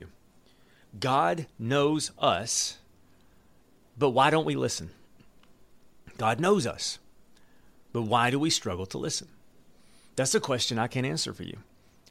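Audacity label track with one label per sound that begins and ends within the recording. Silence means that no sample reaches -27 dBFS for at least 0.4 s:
1.020000	2.680000	sound
4.010000	4.780000	sound
6.210000	6.910000	sound
7.950000	9.190000	sound
10.180000	11.500000	sound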